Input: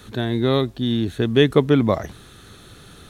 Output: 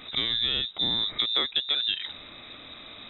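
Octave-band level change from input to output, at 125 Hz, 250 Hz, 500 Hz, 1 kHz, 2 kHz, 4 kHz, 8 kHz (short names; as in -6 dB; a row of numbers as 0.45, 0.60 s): -24.0 dB, -23.0 dB, -23.5 dB, -11.5 dB, -6.0 dB, +7.5 dB, n/a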